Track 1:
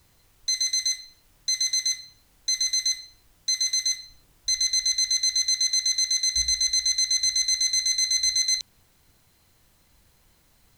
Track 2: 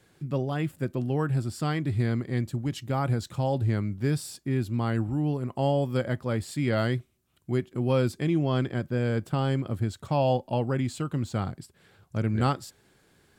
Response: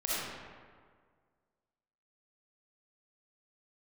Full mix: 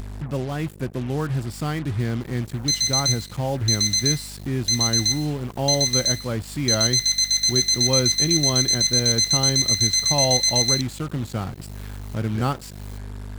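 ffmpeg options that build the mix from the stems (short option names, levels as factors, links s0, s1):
-filter_complex "[0:a]highpass=310,adelay=2200,volume=1.41[s0];[1:a]aeval=exprs='val(0)+0.00794*(sin(2*PI*50*n/s)+sin(2*PI*2*50*n/s)/2+sin(2*PI*3*50*n/s)/3+sin(2*PI*4*50*n/s)/4+sin(2*PI*5*50*n/s)/5)':c=same,volume=1.19[s1];[s0][s1]amix=inputs=2:normalize=0,acompressor=mode=upward:threshold=0.0501:ratio=2.5,acrusher=bits=5:mix=0:aa=0.5"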